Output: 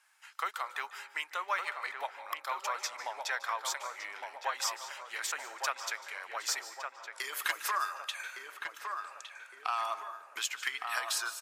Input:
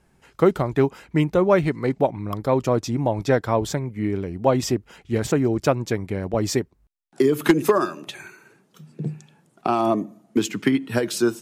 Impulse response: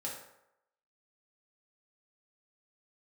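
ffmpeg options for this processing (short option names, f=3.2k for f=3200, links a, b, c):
-filter_complex "[0:a]highpass=f=1.1k:w=0.5412,highpass=f=1.1k:w=1.3066,acompressor=threshold=-41dB:ratio=1.5,asoftclip=type=hard:threshold=-21.5dB,asplit=2[a][b];[b]adelay=1161,lowpass=f=1.6k:p=1,volume=-4dB,asplit=2[c][d];[d]adelay=1161,lowpass=f=1.6k:p=1,volume=0.54,asplit=2[e][f];[f]adelay=1161,lowpass=f=1.6k:p=1,volume=0.54,asplit=2[g][h];[h]adelay=1161,lowpass=f=1.6k:p=1,volume=0.54,asplit=2[i][j];[j]adelay=1161,lowpass=f=1.6k:p=1,volume=0.54,asplit=2[k][l];[l]adelay=1161,lowpass=f=1.6k:p=1,volume=0.54,asplit=2[m][n];[n]adelay=1161,lowpass=f=1.6k:p=1,volume=0.54[o];[a][c][e][g][i][k][m][o]amix=inputs=8:normalize=0,asplit=2[p][q];[1:a]atrim=start_sample=2205,adelay=148[r];[q][r]afir=irnorm=-1:irlink=0,volume=-13.5dB[s];[p][s]amix=inputs=2:normalize=0,volume=1.5dB"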